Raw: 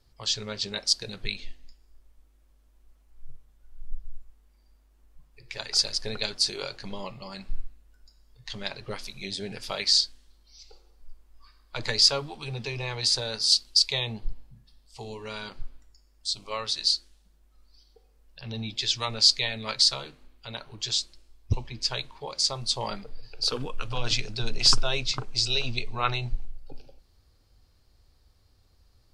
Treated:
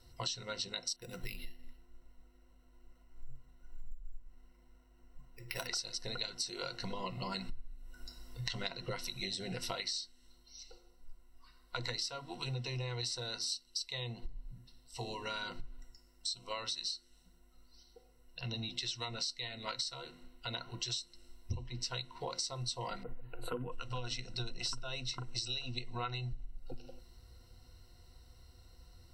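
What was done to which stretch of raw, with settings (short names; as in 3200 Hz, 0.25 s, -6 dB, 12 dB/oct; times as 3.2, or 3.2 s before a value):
0.96–5.67 careless resampling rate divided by 6×, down filtered, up hold
23.03–23.72 Butterworth band-stop 5300 Hz, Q 0.57
whole clip: vocal rider 2 s; ripple EQ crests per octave 2, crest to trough 15 dB; compressor 10:1, threshold -36 dBFS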